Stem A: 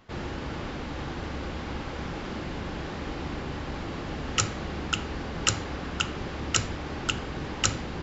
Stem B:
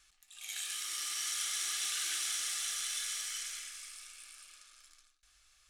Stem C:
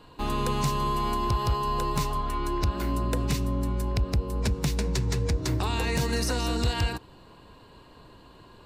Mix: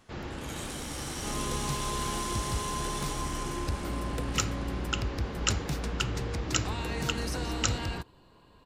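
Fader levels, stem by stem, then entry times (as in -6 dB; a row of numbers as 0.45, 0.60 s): -4.0, -3.5, -7.5 dB; 0.00, 0.00, 1.05 s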